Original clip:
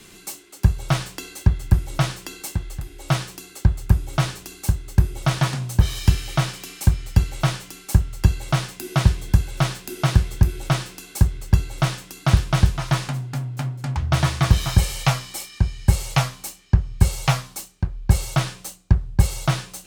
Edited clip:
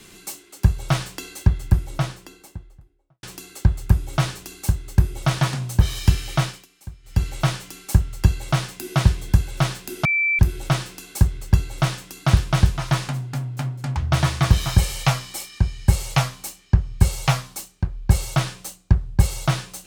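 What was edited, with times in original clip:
0:01.43–0:03.23: fade out and dull
0:06.43–0:07.27: duck −19.5 dB, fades 0.24 s
0:10.05–0:10.39: beep over 2,330 Hz −17 dBFS

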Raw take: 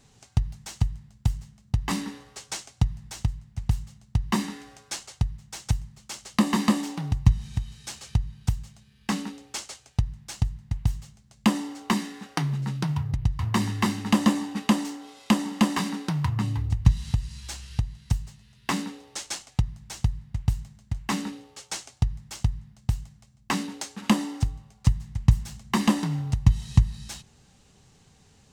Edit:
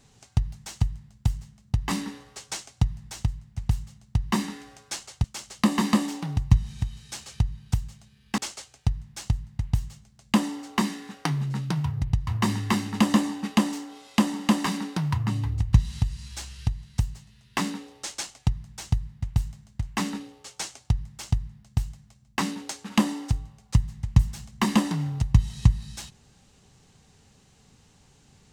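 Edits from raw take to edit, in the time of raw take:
0:05.24–0:05.99: remove
0:09.13–0:09.50: remove

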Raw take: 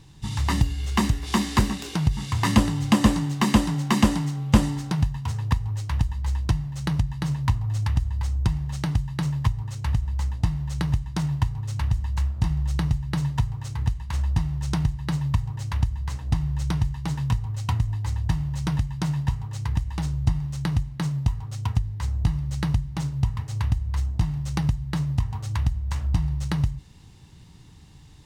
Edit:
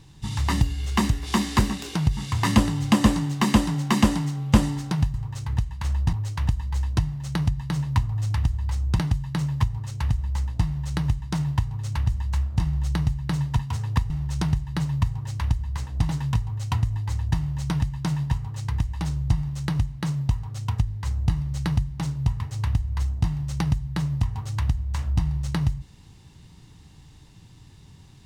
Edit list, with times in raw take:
0:05.14–0:05.65: swap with 0:13.43–0:14.42
0:08.51–0:08.83: remove
0:16.41–0:17.06: remove

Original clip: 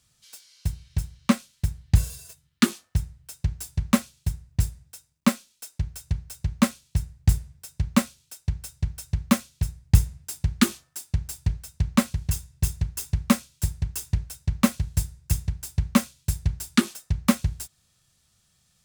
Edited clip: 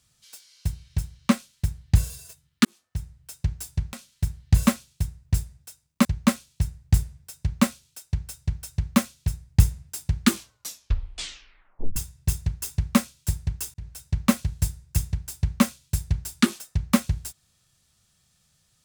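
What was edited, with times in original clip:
0:01.34–0:02.08: duplicate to 0:03.93
0:02.65–0:03.32: fade in
0:05.31–0:06.40: remove
0:10.63: tape stop 1.68 s
0:14.09–0:14.38: fade in

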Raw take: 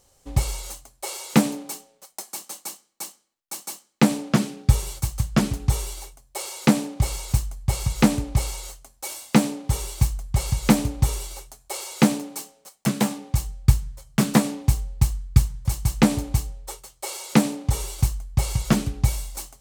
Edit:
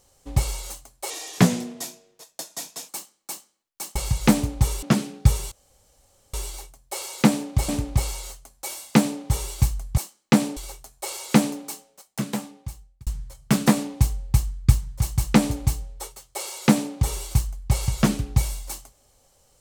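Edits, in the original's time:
0:01.10–0:02.60: play speed 84%
0:03.67–0:04.26: swap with 0:10.37–0:11.24
0:04.95–0:05.77: fill with room tone
0:07.12–0:08.08: remove
0:12.21–0:13.74: fade out

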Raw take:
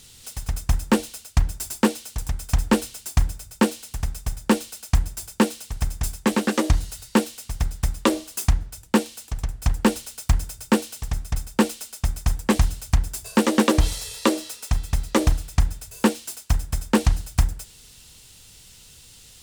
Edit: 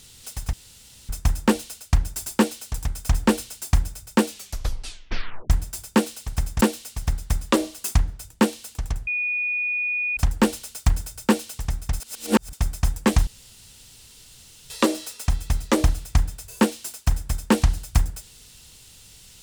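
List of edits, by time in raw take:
0:00.53: splice in room tone 0.56 s
0:03.71: tape stop 1.23 s
0:06.05–0:07.14: remove
0:09.60: insert tone 2,460 Hz −22 dBFS 1.10 s
0:11.43–0:11.96: reverse
0:12.70–0:14.13: fill with room tone

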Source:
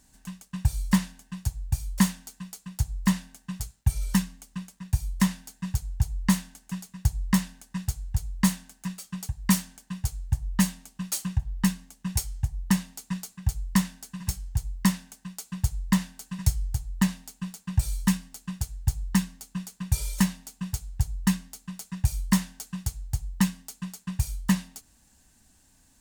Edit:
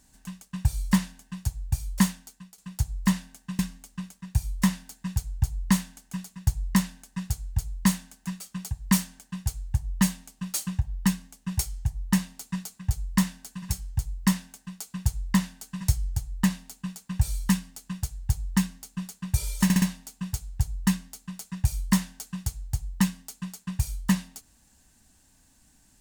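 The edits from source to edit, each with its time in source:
0:02.01–0:02.58: fade out, to −12 dB
0:03.59–0:04.17: remove
0:20.22: stutter 0.06 s, 4 plays

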